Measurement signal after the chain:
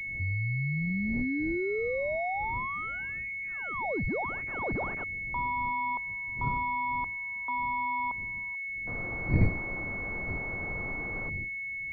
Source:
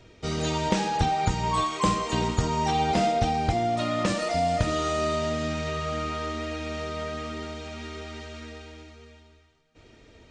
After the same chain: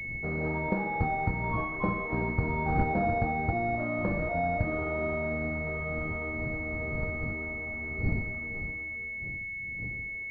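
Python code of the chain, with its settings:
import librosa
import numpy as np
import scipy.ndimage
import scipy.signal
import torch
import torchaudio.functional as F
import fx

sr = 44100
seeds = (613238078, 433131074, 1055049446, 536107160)

y = fx.dmg_wind(x, sr, seeds[0], corner_hz=140.0, level_db=-35.0)
y = fx.pwm(y, sr, carrier_hz=2200.0)
y = F.gain(torch.from_numpy(y), -4.0).numpy()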